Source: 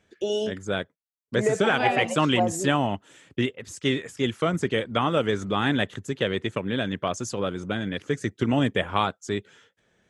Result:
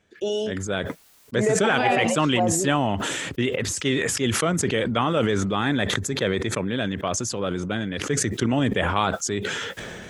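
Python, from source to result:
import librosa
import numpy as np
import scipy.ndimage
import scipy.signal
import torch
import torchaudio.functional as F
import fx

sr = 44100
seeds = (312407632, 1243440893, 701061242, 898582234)

y = fx.notch(x, sr, hz=2900.0, q=5.8, at=(5.62, 6.71))
y = fx.sustainer(y, sr, db_per_s=21.0)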